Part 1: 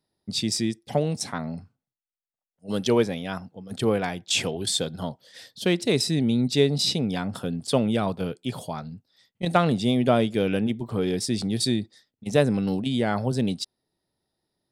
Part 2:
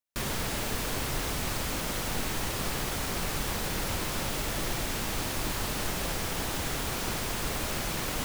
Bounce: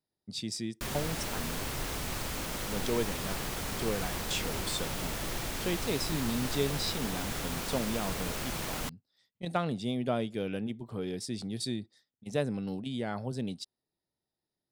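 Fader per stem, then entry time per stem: -10.5 dB, -4.0 dB; 0.00 s, 0.65 s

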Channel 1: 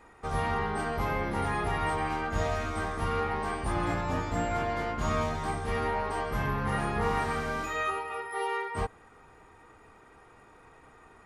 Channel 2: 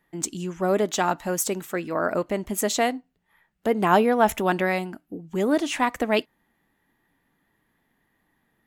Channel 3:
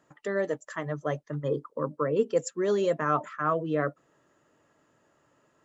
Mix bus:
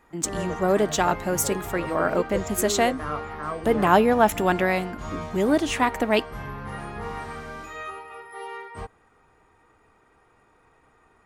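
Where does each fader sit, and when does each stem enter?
-5.0 dB, +1.0 dB, -5.5 dB; 0.00 s, 0.00 s, 0.00 s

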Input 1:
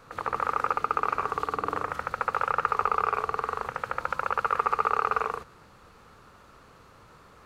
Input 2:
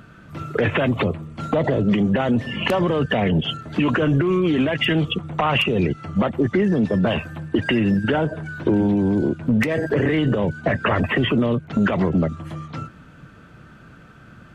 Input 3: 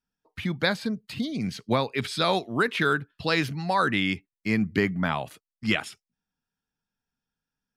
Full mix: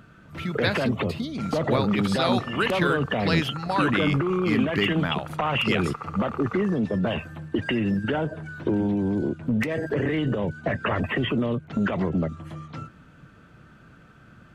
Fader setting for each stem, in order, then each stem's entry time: -11.0 dB, -5.5 dB, -1.5 dB; 1.35 s, 0.00 s, 0.00 s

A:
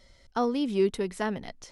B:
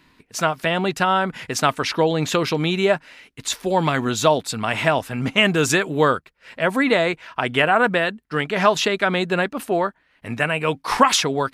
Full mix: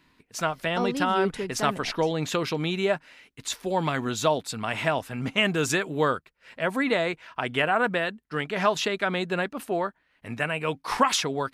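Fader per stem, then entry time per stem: -2.0 dB, -6.5 dB; 0.40 s, 0.00 s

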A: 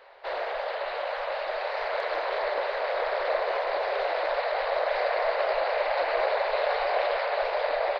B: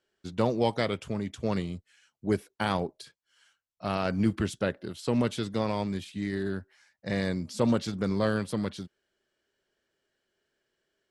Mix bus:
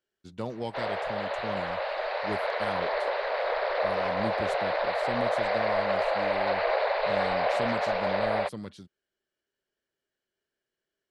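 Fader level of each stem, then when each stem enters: -0.5 dB, -8.5 dB; 0.50 s, 0.00 s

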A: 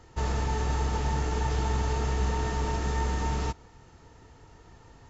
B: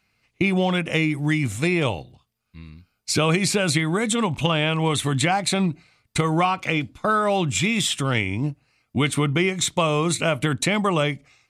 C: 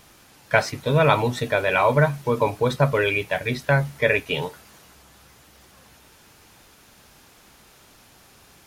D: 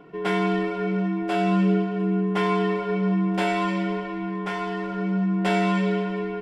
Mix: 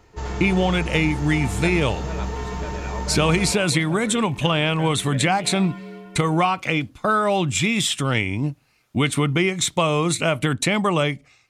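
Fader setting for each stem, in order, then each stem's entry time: -1.0 dB, +1.0 dB, -17.5 dB, -14.0 dB; 0.00 s, 0.00 s, 1.10 s, 0.00 s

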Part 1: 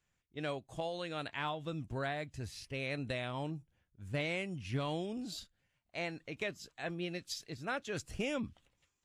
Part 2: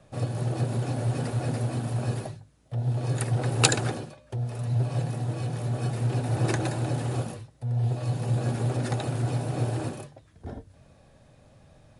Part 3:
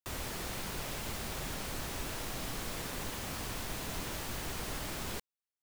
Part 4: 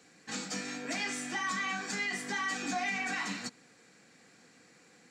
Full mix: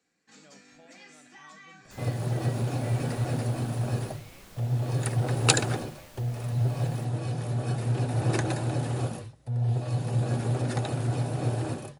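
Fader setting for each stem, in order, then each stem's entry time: -19.5 dB, -0.5 dB, -12.0 dB, -16.5 dB; 0.00 s, 1.85 s, 1.85 s, 0.00 s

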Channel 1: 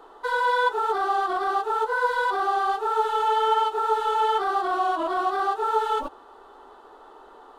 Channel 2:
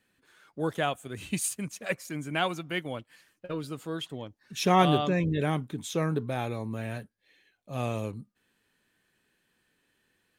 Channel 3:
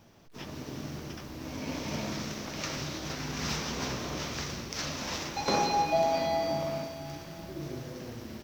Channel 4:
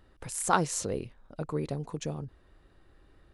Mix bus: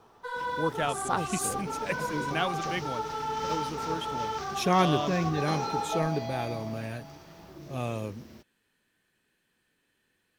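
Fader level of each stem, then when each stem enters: -10.5 dB, -1.5 dB, -7.5 dB, -5.5 dB; 0.00 s, 0.00 s, 0.00 s, 0.60 s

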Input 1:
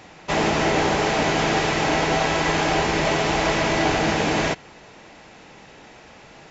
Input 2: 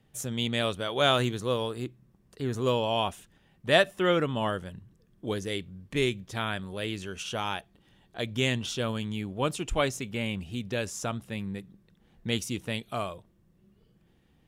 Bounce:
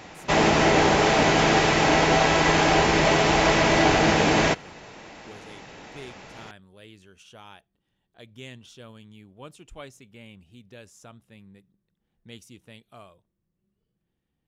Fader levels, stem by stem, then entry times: +1.5 dB, -15.0 dB; 0.00 s, 0.00 s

